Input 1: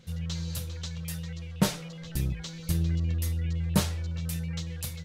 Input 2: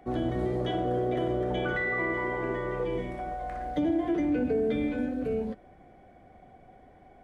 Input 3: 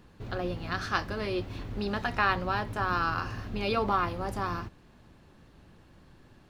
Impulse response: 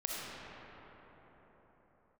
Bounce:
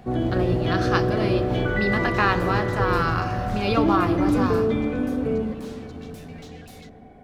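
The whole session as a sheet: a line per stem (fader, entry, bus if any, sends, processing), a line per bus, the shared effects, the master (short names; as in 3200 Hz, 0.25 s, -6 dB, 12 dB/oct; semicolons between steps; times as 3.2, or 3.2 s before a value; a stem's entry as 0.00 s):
-19.5 dB, 1.85 s, send -22 dB, compressor, threshold -31 dBFS, peak gain reduction 13 dB; overdrive pedal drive 31 dB, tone 4100 Hz, clips at -18 dBFS
+1.5 dB, 0.00 s, send -11 dB, dry
+3.0 dB, 0.00 s, send -14 dB, dry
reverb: on, pre-delay 20 ms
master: bell 120 Hz +6 dB 1.9 oct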